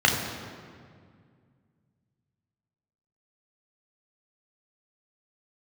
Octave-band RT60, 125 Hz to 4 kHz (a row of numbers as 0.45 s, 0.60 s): 3.1 s, 2.8 s, 2.2 s, 1.9 s, 1.7 s, 1.3 s